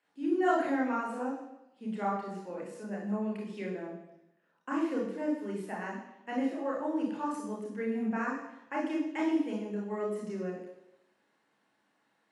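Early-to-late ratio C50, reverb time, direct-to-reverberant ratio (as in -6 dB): 3.0 dB, 0.90 s, -3.0 dB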